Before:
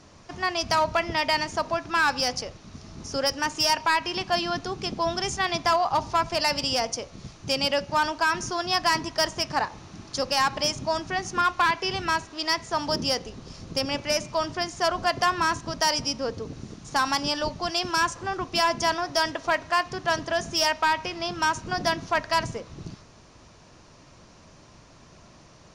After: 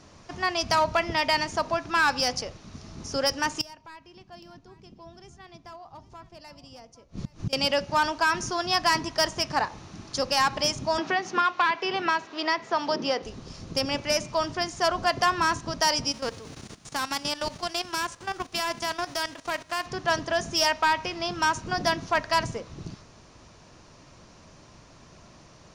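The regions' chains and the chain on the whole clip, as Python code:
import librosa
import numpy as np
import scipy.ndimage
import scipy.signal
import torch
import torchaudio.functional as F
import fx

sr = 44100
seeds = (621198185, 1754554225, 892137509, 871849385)

y = fx.chain(x, sr, fx.gate_flip(shuts_db=-29.0, range_db=-25),
    fx.low_shelf(hz=430.0, db=11.5),
    fx.echo_single(ms=813, db=-17.0), at=(3.61, 7.53))
y = fx.chain(y, sr, fx.bandpass_edges(low_hz=270.0, high_hz=3700.0),
    fx.band_squash(depth_pct=70), at=(10.98, 13.23))
y = fx.envelope_flatten(y, sr, power=0.6, at=(16.11, 19.85), fade=0.02)
y = fx.level_steps(y, sr, step_db=14, at=(16.11, 19.85), fade=0.02)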